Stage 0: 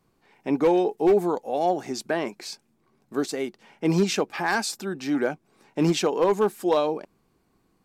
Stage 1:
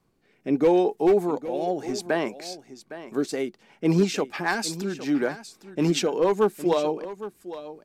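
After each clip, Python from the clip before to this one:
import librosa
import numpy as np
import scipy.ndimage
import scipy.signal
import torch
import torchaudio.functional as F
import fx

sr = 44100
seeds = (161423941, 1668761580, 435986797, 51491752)

y = fx.rotary_switch(x, sr, hz=0.8, then_hz=6.7, switch_at_s=2.78)
y = y + 10.0 ** (-14.0 / 20.0) * np.pad(y, (int(811 * sr / 1000.0), 0))[:len(y)]
y = y * 10.0 ** (1.5 / 20.0)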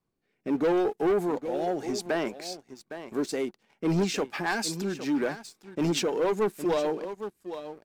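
y = fx.leveller(x, sr, passes=2)
y = y * 10.0 ** (-8.5 / 20.0)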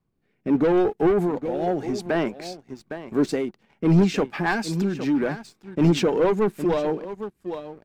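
y = fx.bass_treble(x, sr, bass_db=8, treble_db=-8)
y = fx.am_noise(y, sr, seeds[0], hz=5.7, depth_pct=60)
y = y * 10.0 ** (7.0 / 20.0)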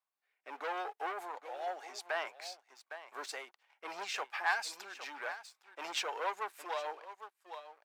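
y = scipy.signal.sosfilt(scipy.signal.butter(4, 760.0, 'highpass', fs=sr, output='sos'), x)
y = y * 10.0 ** (-6.0 / 20.0)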